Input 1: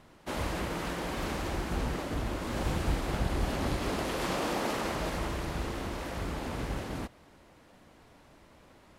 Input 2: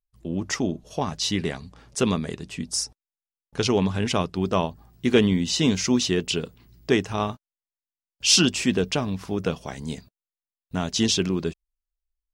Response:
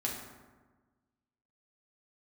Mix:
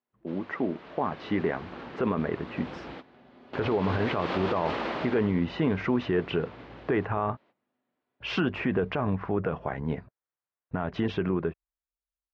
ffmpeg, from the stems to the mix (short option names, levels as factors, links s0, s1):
-filter_complex "[0:a]lowpass=f=3900:w=0.5412,lowpass=f=3900:w=1.3066,volume=0.422,afade=t=in:st=3.24:d=0.76:silence=0.398107,afade=t=out:st=5.02:d=0.29:silence=0.298538,asplit=2[s0][s1];[s1]volume=0.1[s2];[1:a]lowpass=f=1800:w=0.5412,lowpass=f=1800:w=1.3066,asubboost=boost=10.5:cutoff=71,alimiter=limit=0.158:level=0:latency=1:release=80,volume=0.841,asplit=2[s3][s4];[s4]apad=whole_len=396235[s5];[s0][s5]sidechaingate=range=0.0224:threshold=0.00251:ratio=16:detection=peak[s6];[2:a]atrim=start_sample=2205[s7];[s2][s7]afir=irnorm=-1:irlink=0[s8];[s6][s3][s8]amix=inputs=3:normalize=0,dynaudnorm=f=110:g=21:m=2.82,highpass=220,alimiter=limit=0.15:level=0:latency=1:release=44"